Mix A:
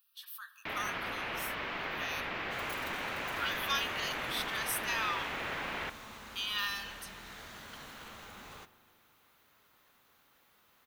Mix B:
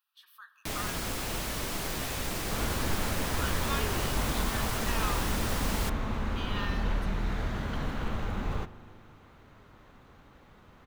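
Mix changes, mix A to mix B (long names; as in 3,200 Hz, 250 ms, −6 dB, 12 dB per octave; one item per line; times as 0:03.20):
first sound: remove low-pass filter 2,500 Hz 24 dB per octave
second sound +11.0 dB
master: add spectral tilt −4 dB per octave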